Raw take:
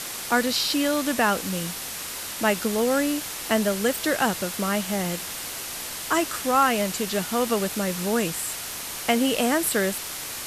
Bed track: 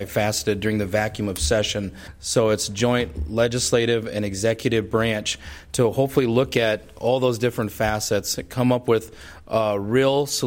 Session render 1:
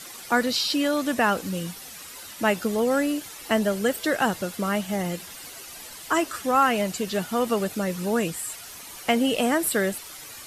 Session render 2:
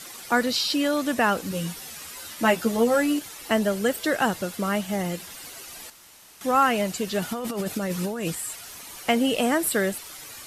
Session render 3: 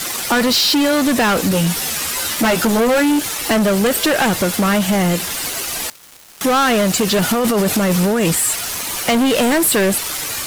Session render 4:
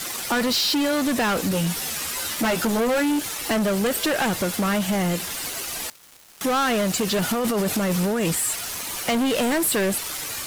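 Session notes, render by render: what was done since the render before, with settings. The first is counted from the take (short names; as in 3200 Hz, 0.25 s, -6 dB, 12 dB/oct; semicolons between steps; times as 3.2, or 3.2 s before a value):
denoiser 11 dB, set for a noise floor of -34 dBFS
1.5–3.19 doubler 13 ms -3 dB; 5.9–6.41 room tone; 7.22–8.35 negative-ratio compressor -28 dBFS
sample leveller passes 5; compressor, threshold -13 dBFS, peak gain reduction 3.5 dB
gain -7 dB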